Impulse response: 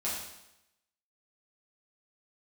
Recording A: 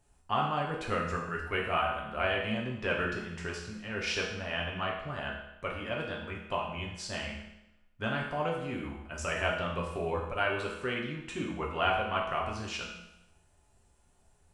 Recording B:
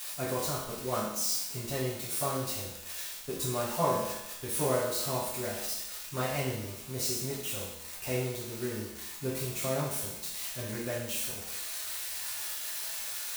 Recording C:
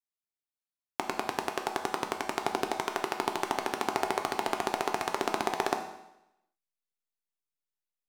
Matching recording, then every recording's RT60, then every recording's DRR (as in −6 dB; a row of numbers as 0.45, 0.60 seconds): B; 0.85, 0.85, 0.85 seconds; −2.5, −8.5, 4.0 decibels